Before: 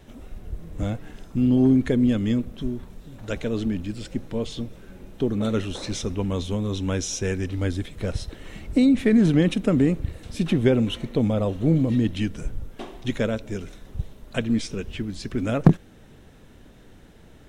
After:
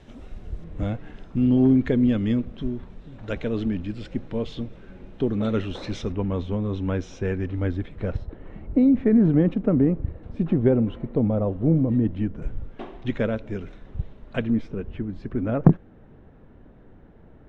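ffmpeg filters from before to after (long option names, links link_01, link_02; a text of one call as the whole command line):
ffmpeg -i in.wav -af "asetnsamples=nb_out_samples=441:pad=0,asendcmd='0.64 lowpass f 3200;6.12 lowpass f 1900;8.17 lowpass f 1100;12.42 lowpass f 2400;14.5 lowpass f 1300',lowpass=5600" out.wav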